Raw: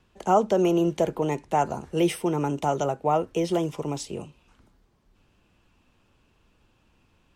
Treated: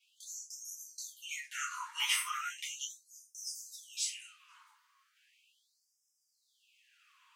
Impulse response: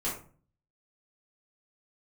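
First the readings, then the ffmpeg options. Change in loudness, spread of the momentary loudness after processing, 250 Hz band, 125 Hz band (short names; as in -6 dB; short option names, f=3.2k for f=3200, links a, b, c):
-12.5 dB, 14 LU, under -40 dB, under -40 dB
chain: -filter_complex "[0:a]acrossover=split=500|3000[a][b][c];[b]acompressor=threshold=-26dB:ratio=6[d];[a][d][c]amix=inputs=3:normalize=0[e];[1:a]atrim=start_sample=2205,afade=t=out:st=0.19:d=0.01,atrim=end_sample=8820[f];[e][f]afir=irnorm=-1:irlink=0,afftfilt=real='re*gte(b*sr/1024,860*pow(5000/860,0.5+0.5*sin(2*PI*0.37*pts/sr)))':imag='im*gte(b*sr/1024,860*pow(5000/860,0.5+0.5*sin(2*PI*0.37*pts/sr)))':win_size=1024:overlap=0.75"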